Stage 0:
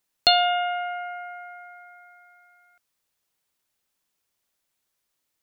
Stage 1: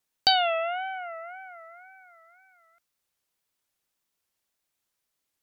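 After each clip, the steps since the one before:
tape wow and flutter 130 cents
level −3 dB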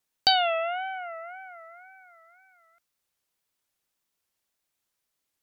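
no processing that can be heard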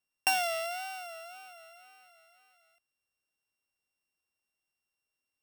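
samples sorted by size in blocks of 16 samples
level −6.5 dB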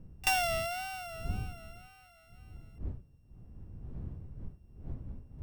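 wavefolder on the positive side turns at −22 dBFS
wind on the microphone 94 Hz −43 dBFS
backwards echo 32 ms −20.5 dB

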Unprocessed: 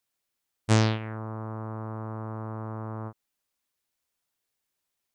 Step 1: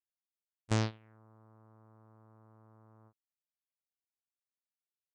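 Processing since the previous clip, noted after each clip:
noise gate −22 dBFS, range −17 dB
level −8.5 dB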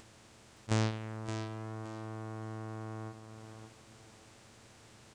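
compressor on every frequency bin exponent 0.4
upward compression, threshold −51 dBFS
repeating echo 570 ms, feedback 26%, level −8.5 dB
level −1 dB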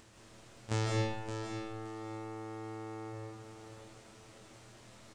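double-tracking delay 25 ms −4 dB
convolution reverb RT60 0.90 s, pre-delay 115 ms, DRR −2.5 dB
level −4 dB

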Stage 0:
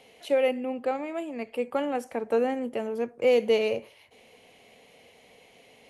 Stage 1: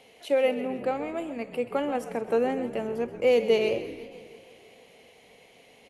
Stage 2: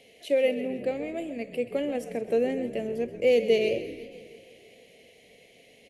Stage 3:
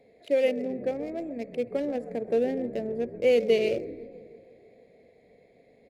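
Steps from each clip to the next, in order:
echo with shifted repeats 130 ms, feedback 48%, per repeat −57 Hz, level −13.5 dB; feedback echo with a swinging delay time 163 ms, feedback 67%, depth 199 cents, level −18.5 dB
flat-topped bell 1,100 Hz −15 dB 1.1 octaves
adaptive Wiener filter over 15 samples

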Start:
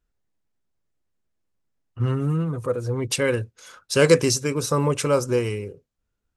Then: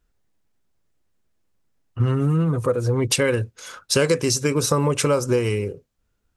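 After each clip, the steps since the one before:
downward compressor 6 to 1, threshold −23 dBFS, peak gain reduction 13 dB
level +7 dB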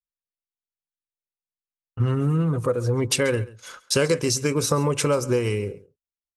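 noise gate −39 dBFS, range −35 dB
single-tap delay 136 ms −19.5 dB
level −2 dB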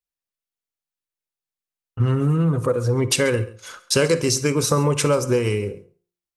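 hum removal 175 Hz, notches 8
on a send at −16 dB: convolution reverb RT60 0.35 s, pre-delay 42 ms
on the sum: level +2.5 dB

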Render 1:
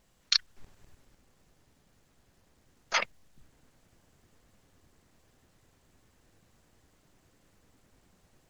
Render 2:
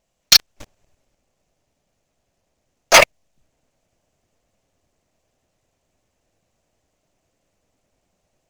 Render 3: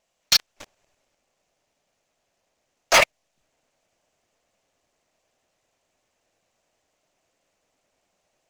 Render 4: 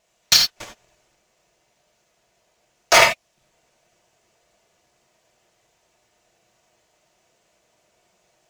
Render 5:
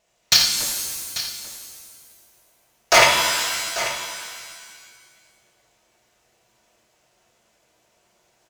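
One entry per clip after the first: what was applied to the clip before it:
graphic EQ with 15 bands 630 Hz +10 dB, 2,500 Hz +5 dB, 6,300 Hz +6 dB; leveller curve on the samples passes 5; parametric band 1,600 Hz −2.5 dB; level +2 dB
mid-hump overdrive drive 15 dB, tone 6,900 Hz, clips at −1 dBFS; level −8 dB
downward compressor 2.5 to 1, threshold −20 dBFS, peak gain reduction 5.5 dB; notch comb filter 270 Hz; reverb whose tail is shaped and stops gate 110 ms flat, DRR 2 dB; level +7.5 dB
single-tap delay 840 ms −13 dB; reverb with rising layers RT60 1.6 s, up +7 semitones, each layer −2 dB, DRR 5 dB; level −1 dB

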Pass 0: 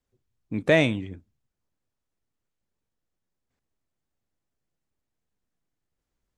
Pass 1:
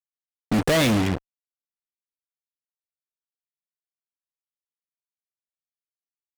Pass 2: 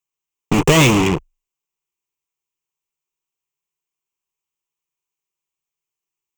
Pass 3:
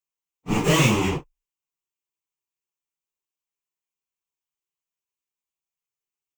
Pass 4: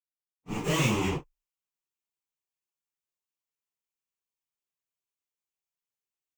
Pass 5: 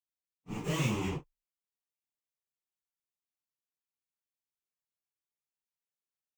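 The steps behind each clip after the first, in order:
fuzz pedal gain 47 dB, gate −40 dBFS; level −4.5 dB
EQ curve with evenly spaced ripples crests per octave 0.72, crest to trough 11 dB; level +7 dB
random phases in long frames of 100 ms; level −6.5 dB
fade in at the beginning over 1.22 s; level −4 dB
parametric band 140 Hz +4 dB 1.8 octaves; level −7.5 dB

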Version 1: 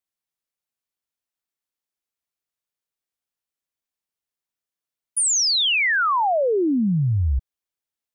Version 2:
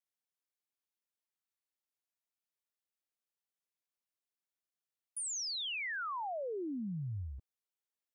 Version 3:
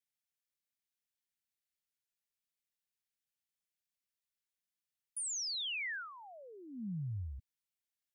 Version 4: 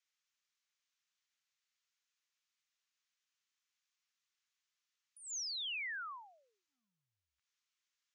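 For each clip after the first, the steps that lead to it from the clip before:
high-pass filter 180 Hz 12 dB per octave; brickwall limiter −28 dBFS, peak gain reduction 11.5 dB; level −7.5 dB
flat-topped bell 590 Hz −14 dB 2.4 octaves
downward compressor, threshold −48 dBFS, peak gain reduction 10 dB; elliptic band-pass filter 1,100–6,700 Hz, stop band 50 dB; level +8 dB

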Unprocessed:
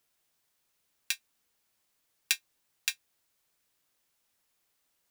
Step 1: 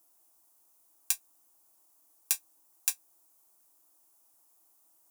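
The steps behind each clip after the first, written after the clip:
drawn EQ curve 110 Hz 0 dB, 200 Hz −10 dB, 320 Hz +12 dB, 460 Hz −2 dB, 690 Hz +10 dB, 1,100 Hz +7 dB, 1,800 Hz −7 dB, 4,000 Hz −5 dB, 6,300 Hz +6 dB, 10,000 Hz +12 dB
brickwall limiter −1 dBFS, peak gain reduction 6 dB
high-pass filter 60 Hz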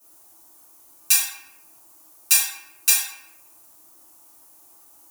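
convolution reverb RT60 0.80 s, pre-delay 3 ms, DRR −13.5 dB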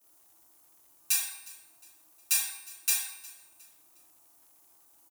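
tuned comb filter 140 Hz, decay 0.89 s, harmonics odd, mix 70%
surface crackle 120 per second −55 dBFS
repeating echo 359 ms, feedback 38%, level −21 dB

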